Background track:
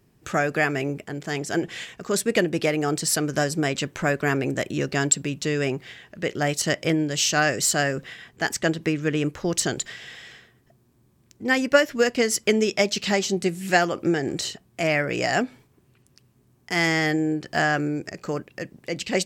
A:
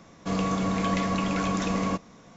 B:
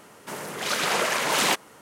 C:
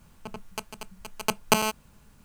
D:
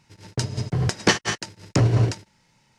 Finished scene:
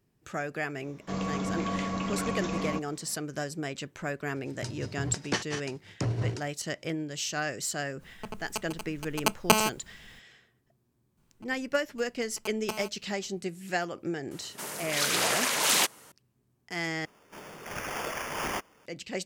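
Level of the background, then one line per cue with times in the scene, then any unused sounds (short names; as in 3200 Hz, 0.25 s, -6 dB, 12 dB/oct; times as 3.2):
background track -11 dB
0.82 add A -5.5 dB
4.25 add D -11.5 dB
7.98 add C, fades 0.05 s
11.17 add C -15 dB
14.31 add B -6.5 dB + high shelf 3300 Hz +10.5 dB
17.05 replace with B -10.5 dB + sample-and-hold 11×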